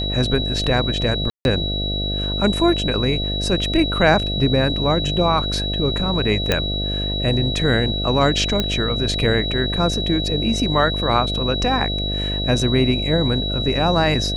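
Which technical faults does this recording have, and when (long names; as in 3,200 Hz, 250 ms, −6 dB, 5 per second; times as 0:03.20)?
mains buzz 50 Hz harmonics 14 −25 dBFS
whistle 3,900 Hz −24 dBFS
0:01.30–0:01.45: drop-out 151 ms
0:06.52: click −3 dBFS
0:08.60: click −6 dBFS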